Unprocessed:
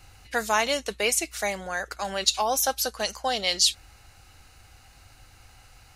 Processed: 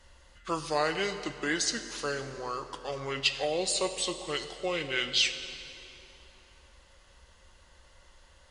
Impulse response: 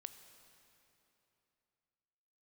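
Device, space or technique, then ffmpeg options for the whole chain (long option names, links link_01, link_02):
slowed and reverbed: -filter_complex "[0:a]asetrate=30870,aresample=44100[link_01];[1:a]atrim=start_sample=2205[link_02];[link_01][link_02]afir=irnorm=-1:irlink=0"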